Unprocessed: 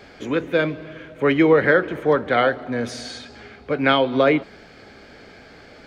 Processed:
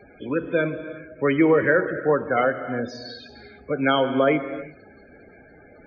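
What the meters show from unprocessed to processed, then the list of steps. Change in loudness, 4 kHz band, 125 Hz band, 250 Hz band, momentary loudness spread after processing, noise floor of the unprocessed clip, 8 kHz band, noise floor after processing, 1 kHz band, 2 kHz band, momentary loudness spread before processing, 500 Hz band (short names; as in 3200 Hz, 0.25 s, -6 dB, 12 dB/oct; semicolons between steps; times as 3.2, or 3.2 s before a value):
-2.5 dB, -5.5 dB, -2.5 dB, -2.0 dB, 18 LU, -46 dBFS, under -10 dB, -50 dBFS, -2.5 dB, -3.0 dB, 17 LU, -2.5 dB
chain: loudest bins only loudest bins 32; non-linear reverb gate 0.38 s flat, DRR 10 dB; gain -2.5 dB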